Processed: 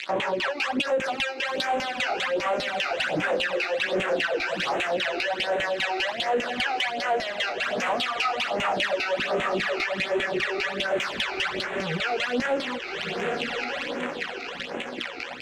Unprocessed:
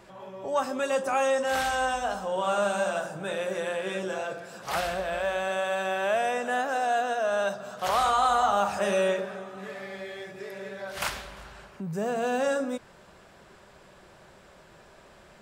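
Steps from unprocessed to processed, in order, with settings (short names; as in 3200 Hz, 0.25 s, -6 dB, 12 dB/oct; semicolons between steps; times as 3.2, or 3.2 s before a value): fuzz box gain 48 dB, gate -48 dBFS; weighting filter D; LFO band-pass saw down 5 Hz 250–3100 Hz; low shelf 210 Hz +9 dB; doubler 17 ms -10.5 dB; diffused feedback echo 1.198 s, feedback 40%, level -11.5 dB; compressor 5:1, threshold -25 dBFS, peak gain reduction 13.5 dB; phaser stages 12, 1.3 Hz, lowest notch 170–4800 Hz; soft clip -19 dBFS, distortion -24 dB; gain +4 dB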